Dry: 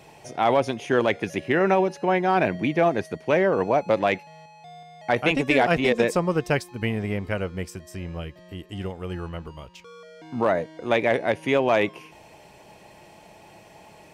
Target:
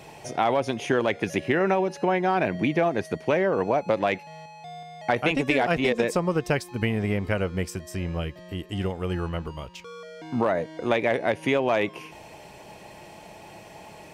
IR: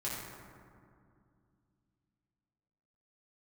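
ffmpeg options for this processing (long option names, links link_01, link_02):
-af "acompressor=threshold=-25dB:ratio=3,volume=4dB"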